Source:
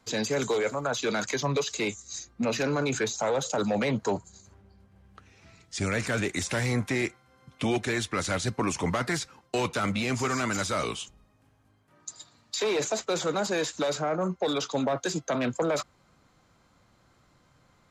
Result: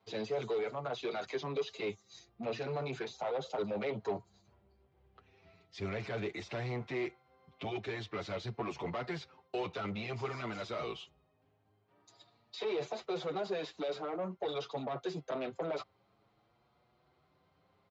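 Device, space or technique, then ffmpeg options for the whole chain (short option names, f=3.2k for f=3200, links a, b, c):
barber-pole flanger into a guitar amplifier: -filter_complex "[0:a]asplit=2[a][b];[b]adelay=7,afreqshift=0.5[c];[a][c]amix=inputs=2:normalize=1,asoftclip=type=tanh:threshold=-27dB,highpass=76,equalizer=f=250:t=q:w=4:g=-6,equalizer=f=400:t=q:w=4:g=7,equalizer=f=720:t=q:w=4:g=6,equalizer=f=1.6k:t=q:w=4:g=-5,lowpass=f=4.3k:w=0.5412,lowpass=f=4.3k:w=1.3066,volume=-5.5dB"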